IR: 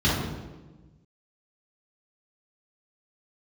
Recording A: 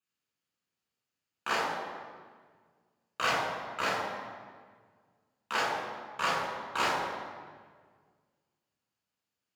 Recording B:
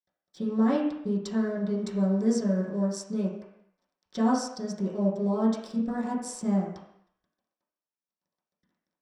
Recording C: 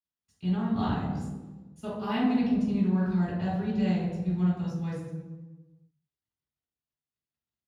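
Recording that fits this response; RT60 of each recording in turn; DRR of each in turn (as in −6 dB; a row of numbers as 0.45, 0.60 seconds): C; 1.7, 0.70, 1.2 seconds; −4.5, −8.5, −10.0 decibels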